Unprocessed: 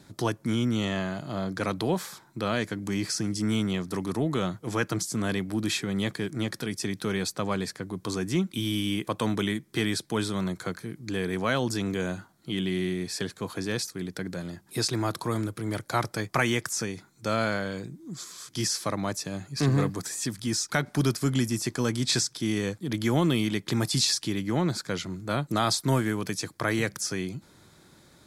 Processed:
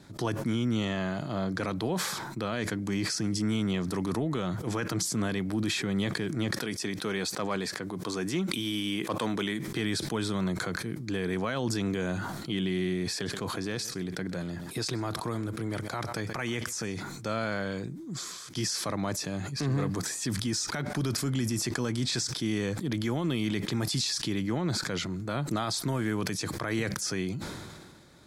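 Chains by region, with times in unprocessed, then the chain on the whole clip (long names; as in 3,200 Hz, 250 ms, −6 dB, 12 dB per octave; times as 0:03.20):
0:06.56–0:09.68: high-pass filter 270 Hz 6 dB per octave + gain into a clipping stage and back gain 20 dB
0:13.13–0:16.94: downward compressor, threshold −28 dBFS + single-tap delay 128 ms −20.5 dB
whole clip: high-shelf EQ 8,600 Hz −8 dB; brickwall limiter −21.5 dBFS; level that may fall only so fast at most 32 dB per second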